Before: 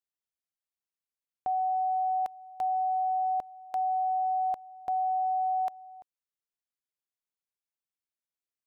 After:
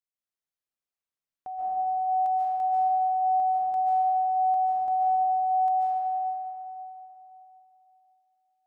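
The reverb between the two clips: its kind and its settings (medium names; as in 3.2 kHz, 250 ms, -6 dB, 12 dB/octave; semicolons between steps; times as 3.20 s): algorithmic reverb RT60 3.2 s, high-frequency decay 0.55×, pre-delay 105 ms, DRR -7.5 dB; trim -7.5 dB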